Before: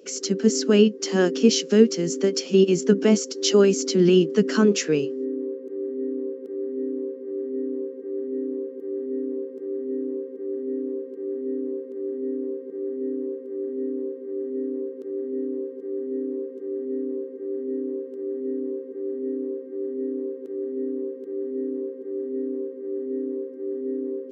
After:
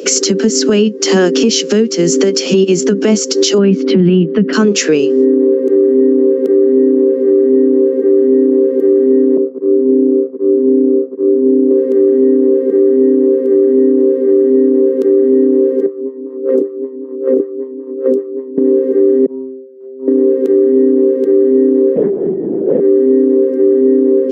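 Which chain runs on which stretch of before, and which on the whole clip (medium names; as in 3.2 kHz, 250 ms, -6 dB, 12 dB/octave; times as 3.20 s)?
3.58–4.53 s: low-pass 3.1 kHz 24 dB/octave + peaking EQ 180 Hz +11 dB 0.76 oct
9.37–11.71 s: band-pass filter 170 Hz, Q 0.51 + expander -32 dBFS
15.86–18.58 s: compressor with a negative ratio -37 dBFS, ratio -0.5 + lamp-driven phase shifter 5.2 Hz
19.26–20.08 s: median filter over 9 samples + gate -26 dBFS, range -23 dB + inharmonic resonator 130 Hz, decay 0.56 s, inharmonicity 0.002
21.96–22.80 s: compressor with a negative ratio -37 dBFS + LPC vocoder at 8 kHz whisper
whole clip: steep high-pass 170 Hz 36 dB/octave; compression 6:1, threshold -30 dBFS; loudness maximiser +25 dB; trim -1 dB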